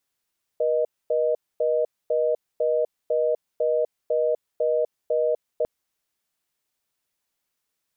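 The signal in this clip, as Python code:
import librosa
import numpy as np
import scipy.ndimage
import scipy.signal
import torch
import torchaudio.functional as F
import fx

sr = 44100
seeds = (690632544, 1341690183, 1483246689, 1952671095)

y = fx.call_progress(sr, length_s=5.05, kind='reorder tone', level_db=-22.0)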